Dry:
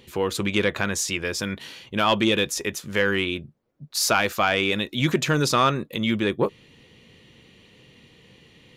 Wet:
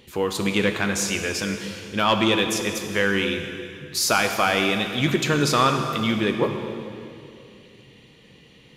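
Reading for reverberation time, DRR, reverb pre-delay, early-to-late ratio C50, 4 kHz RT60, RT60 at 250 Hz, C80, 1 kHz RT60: 2.6 s, 5.0 dB, 3 ms, 6.0 dB, 2.3 s, 3.0 s, 7.0 dB, 2.5 s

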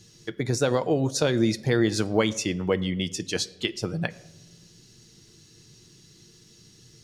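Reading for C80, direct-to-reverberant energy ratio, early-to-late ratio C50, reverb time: 21.0 dB, 11.0 dB, 19.0 dB, 1.0 s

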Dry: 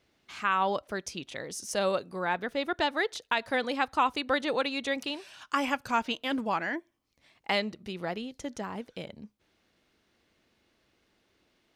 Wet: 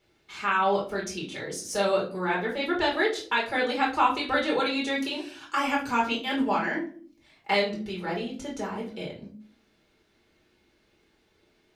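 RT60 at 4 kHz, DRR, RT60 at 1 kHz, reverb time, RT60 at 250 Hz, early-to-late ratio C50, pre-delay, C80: 0.30 s, −4.0 dB, 0.40 s, 0.45 s, 0.75 s, 8.5 dB, 5 ms, 14.0 dB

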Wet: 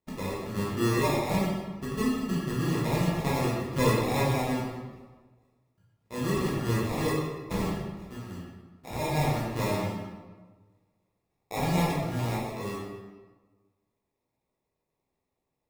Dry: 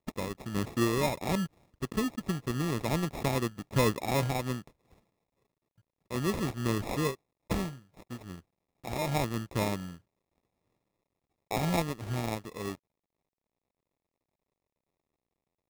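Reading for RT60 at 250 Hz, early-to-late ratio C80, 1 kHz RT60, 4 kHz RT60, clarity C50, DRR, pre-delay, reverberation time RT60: 1.4 s, 2.0 dB, 1.3 s, 0.90 s, −0.5 dB, −8.0 dB, 10 ms, 1.3 s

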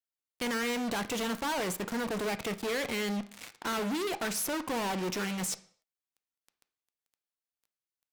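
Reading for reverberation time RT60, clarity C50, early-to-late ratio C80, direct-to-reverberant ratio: non-exponential decay, 16.0 dB, 20.0 dB, 11.0 dB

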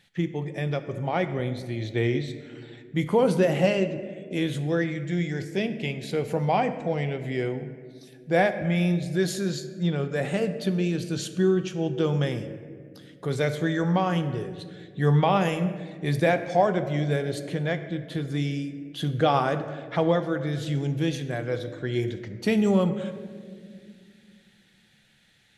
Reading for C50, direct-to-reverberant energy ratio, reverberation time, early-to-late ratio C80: 11.0 dB, 9.0 dB, 2.1 s, 12.0 dB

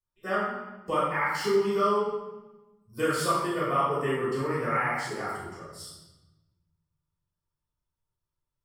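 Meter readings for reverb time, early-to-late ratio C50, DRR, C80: 1.1 s, −0.5 dB, −10.0 dB, 2.0 dB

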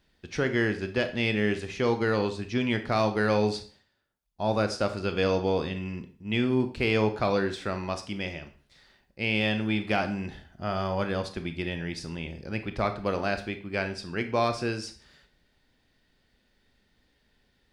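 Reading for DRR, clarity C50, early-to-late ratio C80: 8.0 dB, 12.0 dB, 16.5 dB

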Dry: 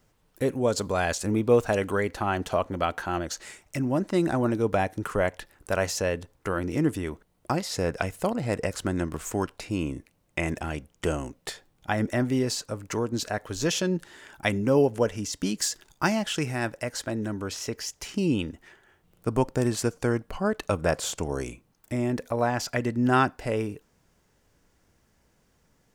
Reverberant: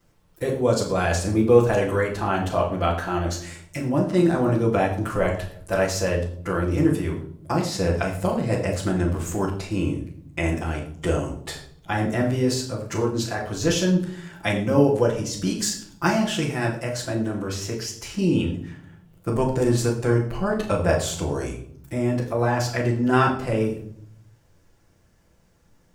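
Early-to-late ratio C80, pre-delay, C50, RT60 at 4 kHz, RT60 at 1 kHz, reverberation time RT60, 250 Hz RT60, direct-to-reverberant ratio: 11.0 dB, 6 ms, 7.0 dB, 0.45 s, 0.55 s, 0.60 s, 1.1 s, −9.0 dB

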